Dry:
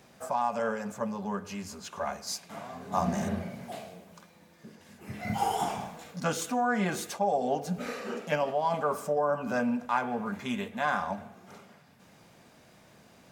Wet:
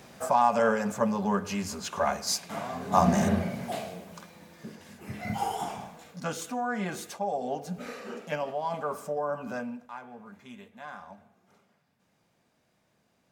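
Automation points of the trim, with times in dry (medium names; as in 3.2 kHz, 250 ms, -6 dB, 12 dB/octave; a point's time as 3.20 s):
4.67 s +6.5 dB
5.58 s -3.5 dB
9.47 s -3.5 dB
9.93 s -14 dB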